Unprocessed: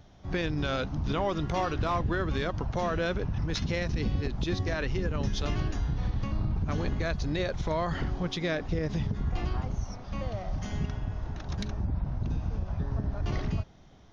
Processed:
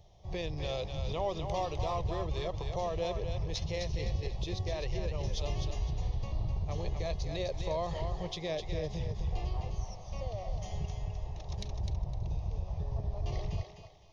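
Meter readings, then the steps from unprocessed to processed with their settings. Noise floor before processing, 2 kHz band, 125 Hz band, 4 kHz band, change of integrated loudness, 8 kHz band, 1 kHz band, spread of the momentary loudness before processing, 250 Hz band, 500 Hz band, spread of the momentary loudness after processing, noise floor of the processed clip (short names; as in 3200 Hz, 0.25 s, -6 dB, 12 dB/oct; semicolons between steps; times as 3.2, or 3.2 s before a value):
-52 dBFS, -11.5 dB, -5.0 dB, -3.5 dB, -5.0 dB, n/a, -5.0 dB, 6 LU, -10.5 dB, -3.0 dB, 5 LU, -49 dBFS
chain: fixed phaser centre 610 Hz, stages 4; thinning echo 0.255 s, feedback 30%, level -5.5 dB; gain -2.5 dB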